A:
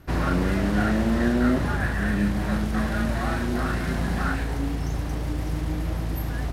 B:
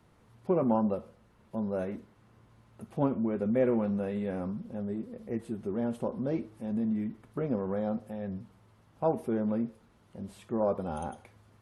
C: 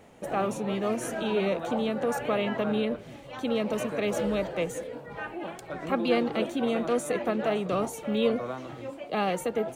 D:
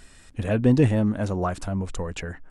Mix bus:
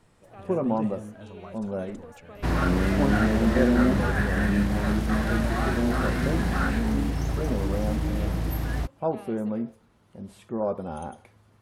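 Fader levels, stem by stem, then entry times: 0.0, +1.0, -19.5, -18.5 dB; 2.35, 0.00, 0.00, 0.00 s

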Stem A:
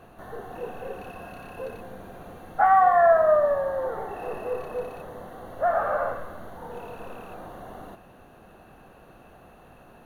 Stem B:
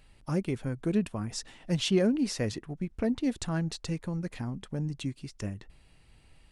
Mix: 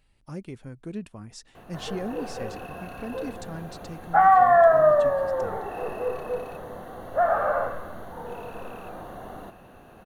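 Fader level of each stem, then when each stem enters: +1.5, -7.5 dB; 1.55, 0.00 s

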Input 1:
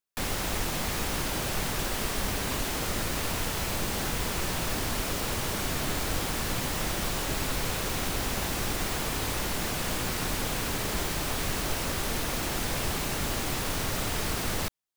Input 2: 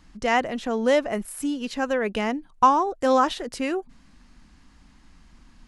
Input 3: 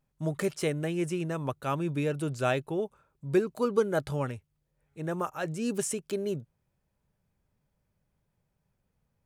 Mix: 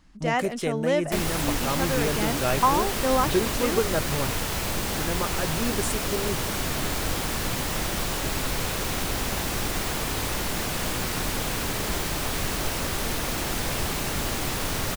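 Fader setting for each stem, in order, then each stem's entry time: +2.5, -4.0, +1.0 dB; 0.95, 0.00, 0.00 s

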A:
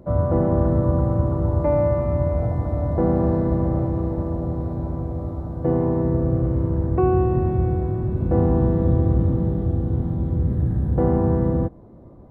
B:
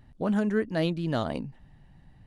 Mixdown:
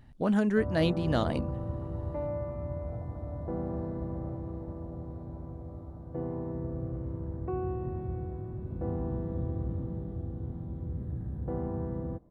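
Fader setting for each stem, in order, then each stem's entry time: -15.0, 0.0 dB; 0.50, 0.00 s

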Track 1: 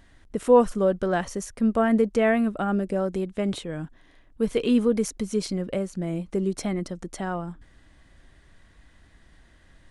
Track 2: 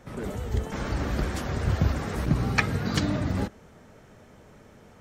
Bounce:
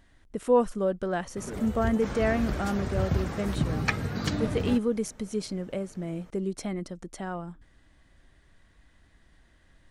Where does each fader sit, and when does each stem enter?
-5.0, -3.5 dB; 0.00, 1.30 s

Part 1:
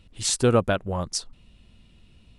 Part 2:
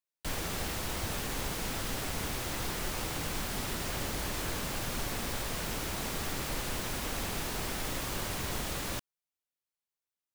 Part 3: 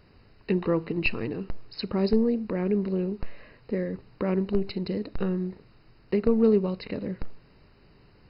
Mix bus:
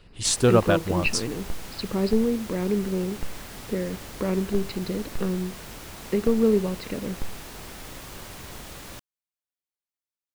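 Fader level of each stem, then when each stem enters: +1.0, -5.0, +0.5 dB; 0.00, 0.00, 0.00 s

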